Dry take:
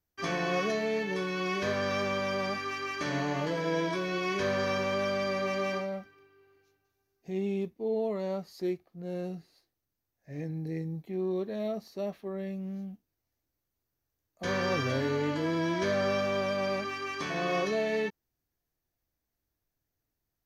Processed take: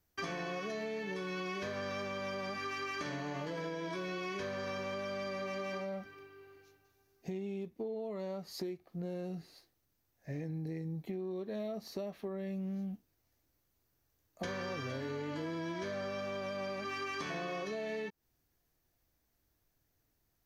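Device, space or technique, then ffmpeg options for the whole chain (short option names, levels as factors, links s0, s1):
serial compression, peaks first: -af "acompressor=threshold=0.0126:ratio=6,acompressor=threshold=0.00562:ratio=2.5,volume=2.11"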